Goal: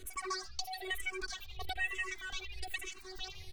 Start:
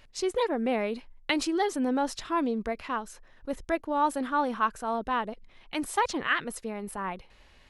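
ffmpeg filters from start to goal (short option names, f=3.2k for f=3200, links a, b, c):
-filter_complex "[0:a]asubboost=boost=3:cutoff=100,afftfilt=real='hypot(re,im)*cos(PI*b)':imag='0':win_size=1024:overlap=0.75,acrossover=split=380|980|1900[a][b][c][d];[a]asoftclip=type=tanh:threshold=-36.5dB[e];[b]aderivative[f];[c]asplit=5[g][h][i][j][k];[h]adelay=166,afreqshift=43,volume=-6.5dB[l];[i]adelay=332,afreqshift=86,volume=-16.7dB[m];[j]adelay=498,afreqshift=129,volume=-26.8dB[n];[k]adelay=664,afreqshift=172,volume=-37dB[o];[g][l][m][n][o]amix=inputs=5:normalize=0[p];[d]acontrast=64[q];[e][f][p][q]amix=inputs=4:normalize=0,asetrate=96138,aresample=44100,acompressor=threshold=-42dB:ratio=20,aeval=exprs='val(0)*gte(abs(val(0)),0.00106)':c=same,lowpass=f=2.7k:p=1,asplit=2[r][s];[s]afreqshift=-1.1[t];[r][t]amix=inputs=2:normalize=1,volume=13.5dB"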